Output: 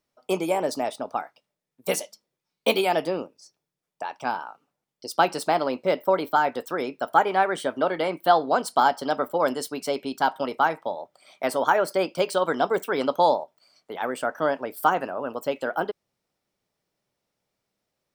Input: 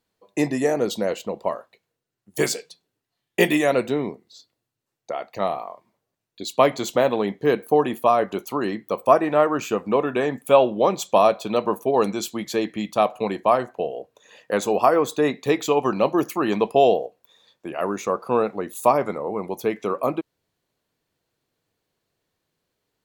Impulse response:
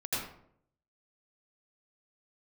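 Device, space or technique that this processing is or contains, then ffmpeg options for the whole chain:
nightcore: -af "asetrate=56007,aresample=44100,volume=0.708"

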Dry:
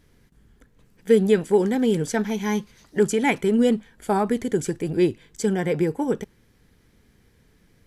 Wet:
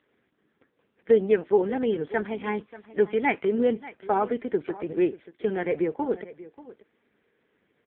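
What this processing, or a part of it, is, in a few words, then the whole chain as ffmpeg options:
satellite phone: -af "highpass=340,lowpass=3100,aecho=1:1:585:0.133" -ar 8000 -c:a libopencore_amrnb -b:a 5900

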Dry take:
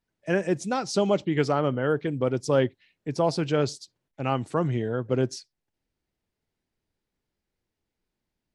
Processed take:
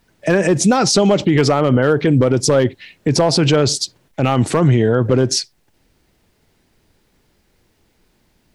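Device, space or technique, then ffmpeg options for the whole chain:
loud club master: -af "acompressor=threshold=0.0562:ratio=2.5,asoftclip=type=hard:threshold=0.106,alimiter=level_in=26.6:limit=0.891:release=50:level=0:latency=1,volume=0.562"

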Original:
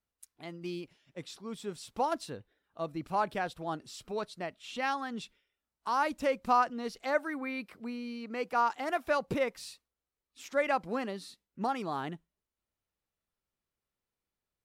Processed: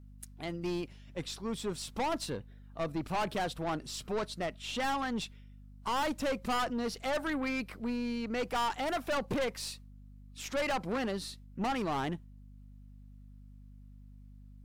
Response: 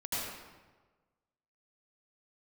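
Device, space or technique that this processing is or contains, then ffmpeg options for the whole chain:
valve amplifier with mains hum: -af "aeval=exprs='(tanh(63.1*val(0)+0.3)-tanh(0.3))/63.1':c=same,aeval=exprs='val(0)+0.00126*(sin(2*PI*50*n/s)+sin(2*PI*2*50*n/s)/2+sin(2*PI*3*50*n/s)/3+sin(2*PI*4*50*n/s)/4+sin(2*PI*5*50*n/s)/5)':c=same,volume=2.24"

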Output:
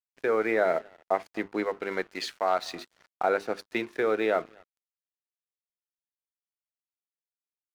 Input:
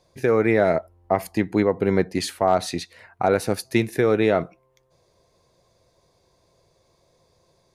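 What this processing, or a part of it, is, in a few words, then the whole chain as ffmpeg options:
pocket radio on a weak battery: -filter_complex "[0:a]bandreject=f=50:t=h:w=6,bandreject=f=100:t=h:w=6,bandreject=f=150:t=h:w=6,bandreject=f=200:t=h:w=6,bandreject=f=250:t=h:w=6,bandreject=f=300:t=h:w=6,bandreject=f=350:t=h:w=6,bandreject=f=400:t=h:w=6,asettb=1/sr,asplit=3[s0][s1][s2];[s0]atrim=end=1.644[s3];[s1]atrim=start=1.64:end=2.72,asetpts=PTS-STARTPTS,afade=t=in:d=0.004:c=qsin,afade=t=out:st=1.076:d=0.004:c=qsin,tiltshelf=f=1100:g=-5[s4];[s2]atrim=start=2.716[s5];[s3][s4]acrossfade=d=0.004:c1=hsin:c2=qsin[s6];[s6][s5]acrossfade=d=0.004:c1=qsin:c2=hsin,highpass=350,lowpass=4200,asplit=2[s7][s8];[s8]adelay=244,lowpass=f=4300:p=1,volume=0.0668,asplit=2[s9][s10];[s10]adelay=244,lowpass=f=4300:p=1,volume=0.29[s11];[s7][s9][s11]amix=inputs=3:normalize=0,aeval=exprs='sgn(val(0))*max(abs(val(0))-0.00668,0)':c=same,equalizer=f=1400:t=o:w=0.46:g=4,volume=0.596"

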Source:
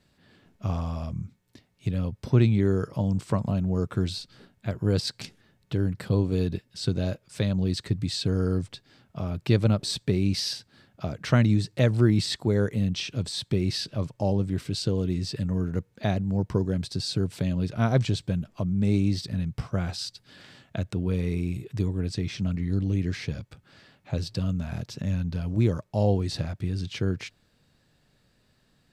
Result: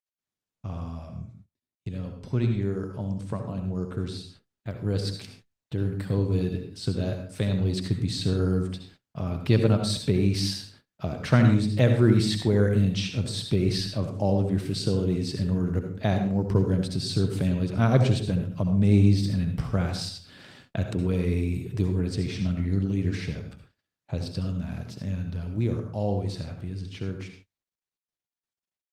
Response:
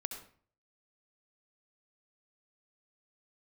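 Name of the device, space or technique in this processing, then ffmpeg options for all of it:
speakerphone in a meeting room: -filter_complex "[0:a]asettb=1/sr,asplit=3[s0][s1][s2];[s0]atrim=end=13.694[s3];[s1]atrim=start=13.69:end=15.28,asetpts=PTS-STARTPTS,afade=t=in:d=0.004:c=qsin,afade=t=out:st=1.586:d=0.004:c=qsin,highpass=77[s4];[s2]atrim=start=15.276[s5];[s3][s4]acrossfade=d=0.004:c1=hsin:c2=qsin[s6];[s6][s5]acrossfade=d=0.004:c1=qsin:c2=hsin[s7];[1:a]atrim=start_sample=2205[s8];[s7][s8]afir=irnorm=-1:irlink=0,dynaudnorm=f=600:g=21:m=4.47,agate=range=0.0224:threshold=0.00631:ratio=16:detection=peak,volume=0.562" -ar 48000 -c:a libopus -b:a 32k

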